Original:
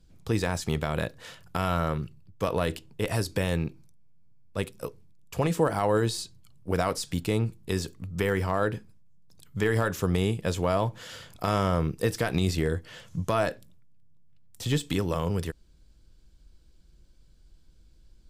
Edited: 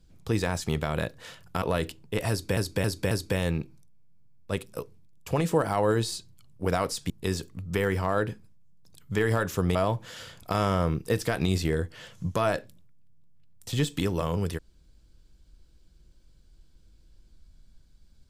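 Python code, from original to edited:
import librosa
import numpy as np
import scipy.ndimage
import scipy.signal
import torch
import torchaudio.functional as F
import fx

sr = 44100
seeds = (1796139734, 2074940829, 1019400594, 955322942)

y = fx.edit(x, sr, fx.cut(start_s=1.62, length_s=0.87),
    fx.repeat(start_s=3.17, length_s=0.27, count=4),
    fx.cut(start_s=7.16, length_s=0.39),
    fx.cut(start_s=10.2, length_s=0.48), tone=tone)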